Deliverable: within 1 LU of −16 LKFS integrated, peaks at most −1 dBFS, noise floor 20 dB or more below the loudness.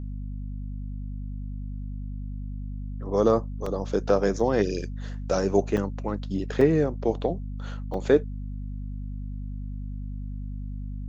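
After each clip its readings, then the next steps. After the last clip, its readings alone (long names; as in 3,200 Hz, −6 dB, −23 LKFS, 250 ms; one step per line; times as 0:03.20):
number of dropouts 5; longest dropout 3.9 ms; mains hum 50 Hz; hum harmonics up to 250 Hz; level of the hum −31 dBFS; integrated loudness −28.5 LKFS; sample peak −7.0 dBFS; target loudness −16.0 LKFS
→ repair the gap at 0:03.66/0:04.40/0:05.77/0:06.61/0:07.94, 3.9 ms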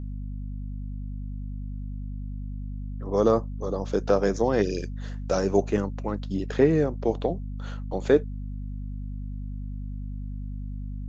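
number of dropouts 0; mains hum 50 Hz; hum harmonics up to 250 Hz; level of the hum −31 dBFS
→ mains-hum notches 50/100/150/200/250 Hz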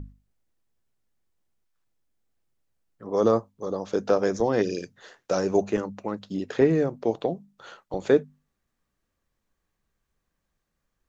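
mains hum none found; integrated loudness −26.0 LKFS; sample peak −7.5 dBFS; target loudness −16.0 LKFS
→ level +10 dB
brickwall limiter −1 dBFS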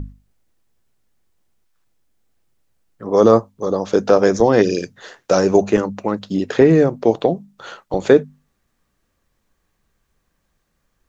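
integrated loudness −16.5 LKFS; sample peak −1.0 dBFS; background noise floor −70 dBFS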